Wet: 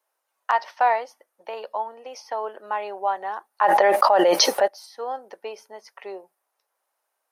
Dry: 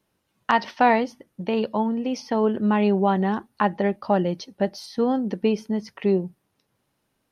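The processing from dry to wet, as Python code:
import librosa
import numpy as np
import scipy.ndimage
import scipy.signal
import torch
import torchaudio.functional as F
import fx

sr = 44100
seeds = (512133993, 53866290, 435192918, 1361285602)

y = scipy.signal.sosfilt(scipy.signal.butter(4, 620.0, 'highpass', fs=sr, output='sos'), x)
y = fx.peak_eq(y, sr, hz=3300.0, db=-10.0, octaves=1.7)
y = fx.env_flatten(y, sr, amount_pct=100, at=(3.61, 4.66), fade=0.02)
y = y * 10.0 ** (1.5 / 20.0)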